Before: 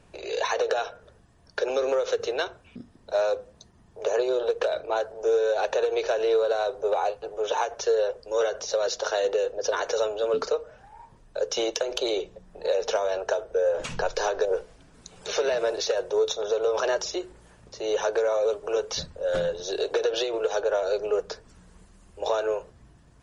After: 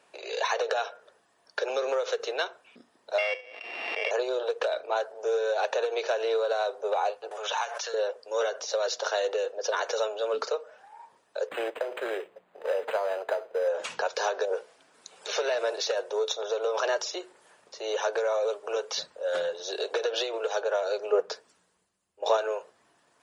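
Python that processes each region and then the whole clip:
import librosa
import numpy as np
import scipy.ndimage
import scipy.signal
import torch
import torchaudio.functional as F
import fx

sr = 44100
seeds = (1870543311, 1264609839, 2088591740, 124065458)

y = fx.chain(x, sr, fx.sample_sort(block=16),
    fx.cabinet(low_hz=380.0, low_slope=24, high_hz=3800.0, hz=(400.0, 570.0, 980.0, 1500.0, 2300.0, 3300.0), db=(-7, -3, -9, -8, 4, -3)),
    fx.pre_swell(db_per_s=32.0), at=(3.18, 4.11))
y = fx.chain(y, sr, fx.highpass(hz=950.0, slope=12),
    fx.pre_swell(db_per_s=31.0), at=(7.31, 7.94))
y = fx.chain(y, sr, fx.cvsd(bps=32000),
    fx.resample_linear(factor=8), at=(11.47, 13.68))
y = fx.chain(y, sr, fx.peak_eq(hz=250.0, db=4.5, octaves=2.6),
    fx.band_widen(depth_pct=70), at=(21.12, 22.37))
y = scipy.signal.sosfilt(scipy.signal.butter(2, 540.0, 'highpass', fs=sr, output='sos'), y)
y = fx.peak_eq(y, sr, hz=6100.0, db=-2.5, octaves=0.43)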